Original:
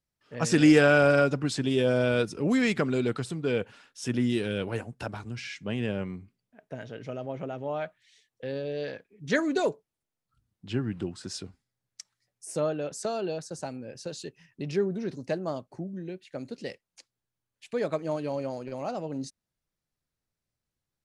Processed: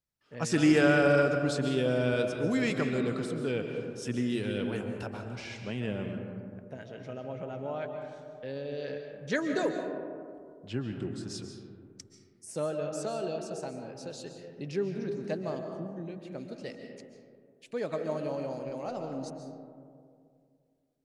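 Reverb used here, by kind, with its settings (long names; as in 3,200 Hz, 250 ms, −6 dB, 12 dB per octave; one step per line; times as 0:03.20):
comb and all-pass reverb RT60 2.3 s, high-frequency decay 0.3×, pre-delay 100 ms, DRR 4.5 dB
level −4.5 dB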